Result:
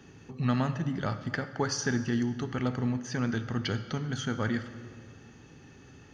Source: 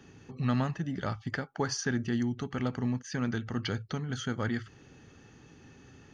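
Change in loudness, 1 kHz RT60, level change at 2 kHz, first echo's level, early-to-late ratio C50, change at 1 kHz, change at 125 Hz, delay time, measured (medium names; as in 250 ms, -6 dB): +1.5 dB, 1.8 s, +2.0 dB, no echo, 11.5 dB, +2.0 dB, +1.5 dB, no echo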